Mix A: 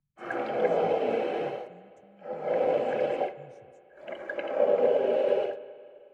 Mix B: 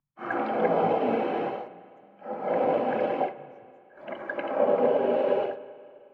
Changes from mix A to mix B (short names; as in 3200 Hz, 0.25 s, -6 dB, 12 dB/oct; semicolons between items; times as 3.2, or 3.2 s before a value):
speech -11.5 dB; master: add graphic EQ 125/250/500/1000/8000 Hz +4/+8/-4/+9/-11 dB